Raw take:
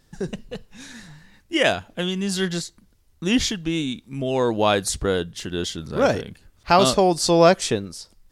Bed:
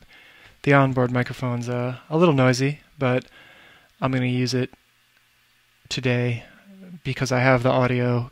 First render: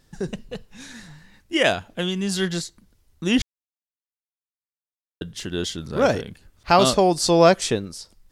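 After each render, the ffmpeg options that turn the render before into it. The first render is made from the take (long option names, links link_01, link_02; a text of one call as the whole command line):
ffmpeg -i in.wav -filter_complex "[0:a]asplit=3[link_01][link_02][link_03];[link_01]atrim=end=3.42,asetpts=PTS-STARTPTS,afade=type=out:start_time=3.416:duration=0.004:curve=hsin[link_04];[link_02]atrim=start=3.42:end=5.21,asetpts=PTS-STARTPTS,volume=0[link_05];[link_03]atrim=start=5.21,asetpts=PTS-STARTPTS,afade=type=in:duration=0.004:curve=hsin[link_06];[link_04][link_05][link_06]concat=n=3:v=0:a=1" out.wav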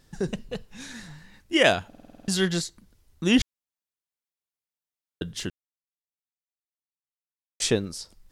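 ffmpeg -i in.wav -filter_complex "[0:a]asplit=11[link_01][link_02][link_03][link_04][link_05][link_06][link_07][link_08][link_09][link_10][link_11];[link_01]atrim=end=1.932[link_12];[link_02]atrim=start=1.878:end=1.932[link_13];[link_03]atrim=start=1.878:end=1.932[link_14];[link_04]atrim=start=1.878:end=1.932[link_15];[link_05]atrim=start=1.878:end=1.932[link_16];[link_06]atrim=start=1.878:end=1.932[link_17];[link_07]atrim=start=1.878:end=1.932[link_18];[link_08]atrim=start=1.878:end=1.932[link_19];[link_09]atrim=start=2.278:end=5.5,asetpts=PTS-STARTPTS,afade=type=out:start_time=3.218:duration=0.004:curve=hsin[link_20];[link_10]atrim=start=5.5:end=7.6,asetpts=PTS-STARTPTS,volume=0[link_21];[link_11]atrim=start=7.6,asetpts=PTS-STARTPTS,afade=type=in:duration=0.004:curve=hsin[link_22];[link_12][link_13]acrossfade=duration=0.004:curve1=hsin:curve2=hsin[link_23];[link_23][link_14]acrossfade=duration=0.004:curve1=hsin:curve2=hsin[link_24];[link_24][link_15]acrossfade=duration=0.004:curve1=hsin:curve2=hsin[link_25];[link_25][link_16]acrossfade=duration=0.004:curve1=hsin:curve2=hsin[link_26];[link_26][link_17]acrossfade=duration=0.004:curve1=hsin:curve2=hsin[link_27];[link_27][link_18]acrossfade=duration=0.004:curve1=hsin:curve2=hsin[link_28];[link_28][link_19]acrossfade=duration=0.004:curve1=hsin:curve2=hsin[link_29];[link_20][link_21][link_22]concat=n=3:v=0:a=1[link_30];[link_29][link_30]acrossfade=duration=0.004:curve1=hsin:curve2=hsin" out.wav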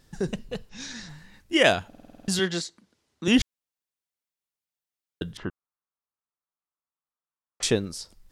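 ffmpeg -i in.wav -filter_complex "[0:a]asettb=1/sr,asplit=3[link_01][link_02][link_03];[link_01]atrim=end=0.694[link_04];[link_02]atrim=start=0.69:end=1.09,asetpts=PTS-STARTPTS,afade=type=in:duration=0.004:curve=qsin,afade=type=out:start_time=0.396:duration=0.004:curve=qsin,lowpass=frequency=5500:width_type=q:width=2.4[link_05];[link_03]atrim=start=1.086[link_06];[link_04][link_05]acrossfade=duration=0.004:curve1=hsin:curve2=qsin[link_07];[link_07][link_06]acrossfade=duration=0.004:curve1=qsin:curve2=hsin,asettb=1/sr,asplit=3[link_08][link_09][link_10];[link_08]atrim=end=2.394[link_11];[link_09]atrim=start=2.39:end=3.28,asetpts=PTS-STARTPTS,afade=type=in:duration=0.004:curve=qsin,afade=type=out:start_time=0.886:duration=0.004:curve=qsin,highpass=220,lowpass=7100[link_12];[link_10]atrim=start=3.276[link_13];[link_11][link_12]acrossfade=duration=0.004:curve1=hsin:curve2=qsin[link_14];[link_14][link_13]acrossfade=duration=0.004:curve1=qsin:curve2=hsin,asettb=1/sr,asplit=3[link_15][link_16][link_17];[link_15]atrim=end=5.374[link_18];[link_16]atrim=start=5.37:end=7.63,asetpts=PTS-STARTPTS,afade=type=in:duration=0.004:curve=qsin,afade=type=out:start_time=2.256:duration=0.004:curve=qsin,lowpass=frequency=1200:width_type=q:width=3.1[link_19];[link_17]atrim=start=7.626[link_20];[link_18][link_19]acrossfade=duration=0.004:curve1=hsin:curve2=qsin[link_21];[link_21][link_20]acrossfade=duration=0.004:curve1=qsin:curve2=hsin" out.wav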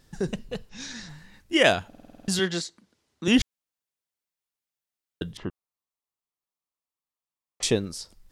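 ffmpeg -i in.wav -filter_complex "[0:a]asettb=1/sr,asplit=3[link_01][link_02][link_03];[link_01]atrim=end=5.274[link_04];[link_02]atrim=start=5.27:end=7.76,asetpts=PTS-STARTPTS,afade=type=in:duration=0.004:curve=qsin,afade=type=out:start_time=2.486:duration=0.004:curve=qsin,equalizer=frequency=1500:width_type=o:width=0.34:gain=-9.5[link_05];[link_03]atrim=start=7.756[link_06];[link_04][link_05]acrossfade=duration=0.004:curve1=hsin:curve2=qsin[link_07];[link_07][link_06]acrossfade=duration=0.004:curve1=qsin:curve2=hsin" out.wav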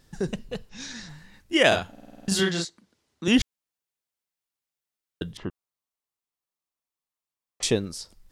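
ffmpeg -i in.wav -filter_complex "[0:a]asettb=1/sr,asplit=3[link_01][link_02][link_03];[link_01]atrim=end=1.684[link_04];[link_02]atrim=start=1.68:end=2.65,asetpts=PTS-STARTPTS,afade=type=in:duration=0.004:curve=qsin,afade=type=out:start_time=0.966:duration=0.004:curve=qsin,asplit=2[link_05][link_06];[link_06]adelay=36,volume=-2.5dB[link_07];[link_05][link_07]amix=inputs=2:normalize=0,atrim=end_sample=42777[link_08];[link_03]atrim=start=2.646[link_09];[link_04][link_08]acrossfade=duration=0.004:curve1=hsin:curve2=qsin[link_10];[link_10][link_09]acrossfade=duration=0.004:curve1=qsin:curve2=hsin" out.wav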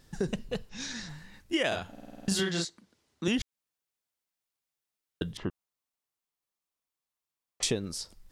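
ffmpeg -i in.wav -af "acompressor=threshold=-25dB:ratio=10" out.wav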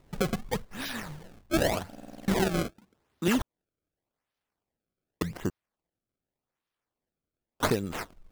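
ffmpeg -i in.wav -filter_complex "[0:a]asplit=2[link_01][link_02];[link_02]aeval=exprs='sgn(val(0))*max(abs(val(0))-0.00282,0)':channel_layout=same,volume=-7dB[link_03];[link_01][link_03]amix=inputs=2:normalize=0,acrusher=samples=27:mix=1:aa=0.000001:lfo=1:lforange=43.2:lforate=0.86" out.wav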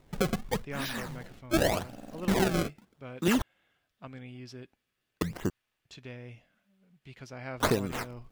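ffmpeg -i in.wav -i bed.wav -filter_complex "[1:a]volume=-22.5dB[link_01];[0:a][link_01]amix=inputs=2:normalize=0" out.wav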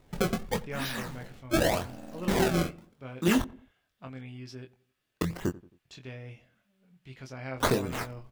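ffmpeg -i in.wav -filter_complex "[0:a]asplit=2[link_01][link_02];[link_02]adelay=23,volume=-6dB[link_03];[link_01][link_03]amix=inputs=2:normalize=0,asplit=2[link_04][link_05];[link_05]adelay=89,lowpass=frequency=1100:poles=1,volume=-19dB,asplit=2[link_06][link_07];[link_07]adelay=89,lowpass=frequency=1100:poles=1,volume=0.44,asplit=2[link_08][link_09];[link_09]adelay=89,lowpass=frequency=1100:poles=1,volume=0.44[link_10];[link_04][link_06][link_08][link_10]amix=inputs=4:normalize=0" out.wav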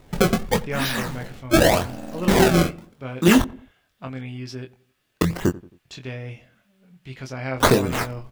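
ffmpeg -i in.wav -af "volume=9.5dB" out.wav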